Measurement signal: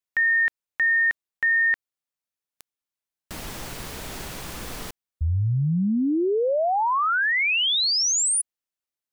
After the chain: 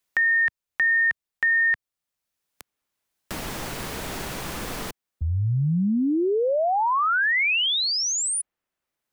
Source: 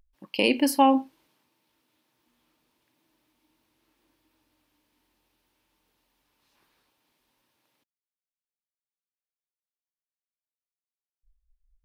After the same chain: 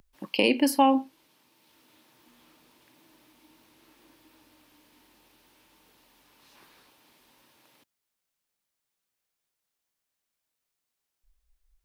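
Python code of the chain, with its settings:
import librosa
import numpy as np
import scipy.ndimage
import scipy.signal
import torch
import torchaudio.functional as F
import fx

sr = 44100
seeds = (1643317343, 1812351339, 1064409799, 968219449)

y = fx.band_squash(x, sr, depth_pct=40)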